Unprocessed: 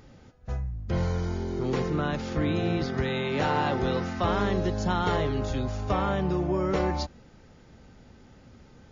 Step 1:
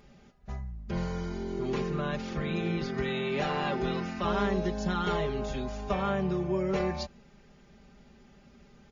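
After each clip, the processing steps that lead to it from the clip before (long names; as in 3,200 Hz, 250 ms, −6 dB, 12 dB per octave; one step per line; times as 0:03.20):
parametric band 2,500 Hz +3.5 dB 0.59 octaves
comb filter 5 ms, depth 81%
level −6 dB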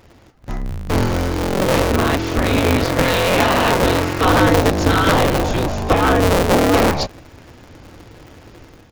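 sub-harmonics by changed cycles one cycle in 2, inverted
automatic gain control gain up to 7 dB
level +8 dB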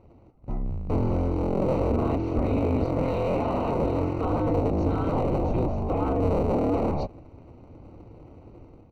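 brickwall limiter −10 dBFS, peak gain reduction 8.5 dB
moving average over 26 samples
level −4.5 dB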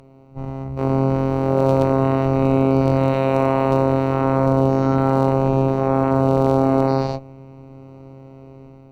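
every bin's largest magnitude spread in time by 240 ms
phases set to zero 134 Hz
harmonic generator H 4 −24 dB, 7 −28 dB, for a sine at −7 dBFS
level +6.5 dB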